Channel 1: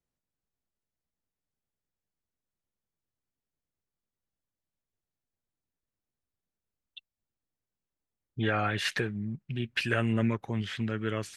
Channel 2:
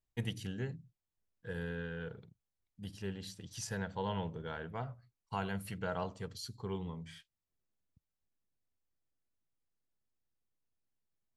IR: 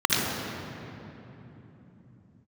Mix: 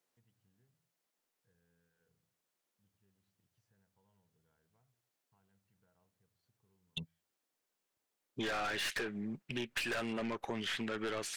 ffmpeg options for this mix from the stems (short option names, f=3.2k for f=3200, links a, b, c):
-filter_complex "[0:a]highpass=370,acontrast=70,aeval=exprs='(tanh(25.1*val(0)+0.2)-tanh(0.2))/25.1':c=same,volume=1.5dB,asplit=2[a][b];[1:a]bass=f=250:g=5,treble=f=4k:g=-14,bandreject=f=83.7:t=h:w=4,bandreject=f=167.4:t=h:w=4,bandreject=f=251.1:t=h:w=4,bandreject=f=334.8:t=h:w=4,bandreject=f=418.5:t=h:w=4,bandreject=f=502.2:t=h:w=4,bandreject=f=585.9:t=h:w=4,acompressor=threshold=-42dB:ratio=2.5,volume=3dB[c];[b]apad=whole_len=501151[d];[c][d]sidechaingate=range=-36dB:threshold=-44dB:ratio=16:detection=peak[e];[a][e]amix=inputs=2:normalize=0,acompressor=threshold=-35dB:ratio=6"